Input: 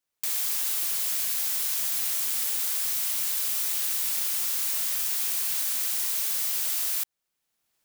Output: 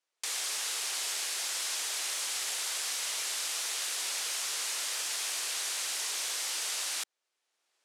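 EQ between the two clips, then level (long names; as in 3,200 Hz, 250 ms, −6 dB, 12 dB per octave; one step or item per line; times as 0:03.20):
high-pass filter 350 Hz 24 dB per octave
Bessel low-pass filter 7,000 Hz, order 4
+2.5 dB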